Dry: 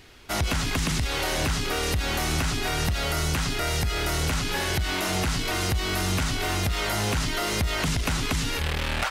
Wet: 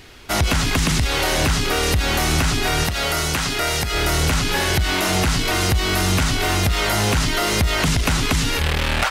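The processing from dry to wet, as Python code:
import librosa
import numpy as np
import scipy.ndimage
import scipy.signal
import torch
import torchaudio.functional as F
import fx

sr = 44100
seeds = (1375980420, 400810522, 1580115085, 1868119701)

y = fx.low_shelf(x, sr, hz=200.0, db=-8.0, at=(2.84, 3.94))
y = y * librosa.db_to_amplitude(7.0)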